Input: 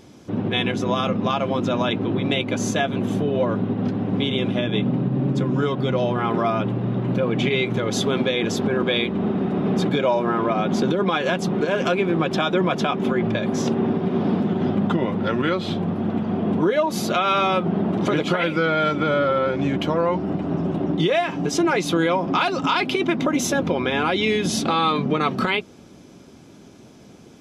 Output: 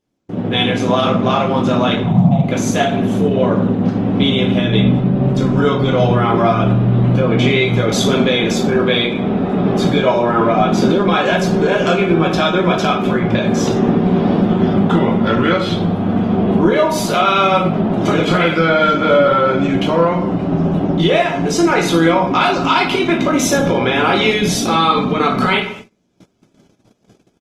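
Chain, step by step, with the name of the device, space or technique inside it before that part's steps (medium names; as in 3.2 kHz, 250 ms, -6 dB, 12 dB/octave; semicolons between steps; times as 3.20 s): 2.03–2.44 s: FFT filter 100 Hz 0 dB, 150 Hz +15 dB, 220 Hz +2 dB, 400 Hz -27 dB, 700 Hz +8 dB, 1.2 kHz -4 dB, 1.7 kHz -23 dB; speakerphone in a meeting room (reverberation RT60 0.55 s, pre-delay 13 ms, DRR 0 dB; speakerphone echo 210 ms, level -21 dB; level rider gain up to 7.5 dB; gate -32 dBFS, range -27 dB; Opus 20 kbps 48 kHz)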